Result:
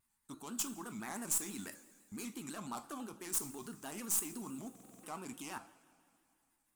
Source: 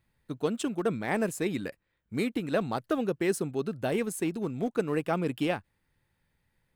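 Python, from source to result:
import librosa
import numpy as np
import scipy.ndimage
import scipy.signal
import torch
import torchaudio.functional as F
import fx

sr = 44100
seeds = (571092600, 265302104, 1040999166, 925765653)

y = fx.tracing_dist(x, sr, depth_ms=0.15)
y = fx.level_steps(y, sr, step_db=21)
y = fx.tilt_shelf(y, sr, db=-9.0, hz=1400.0)
y = 10.0 ** (-33.0 / 20.0) * np.tanh(y / 10.0 ** (-33.0 / 20.0))
y = fx.graphic_eq_10(y, sr, hz=(125, 250, 500, 1000, 2000, 4000, 8000), db=(-10, 8, -10, 9, -9, -8, 8))
y = fx.rev_double_slope(y, sr, seeds[0], early_s=0.44, late_s=2.5, knee_db=-16, drr_db=7.5)
y = fx.buffer_glitch(y, sr, at_s=(4.71,), block=2048, repeats=6)
y = fx.vibrato_shape(y, sr, shape='square', rate_hz=6.0, depth_cents=100.0)
y = y * librosa.db_to_amplitude(4.0)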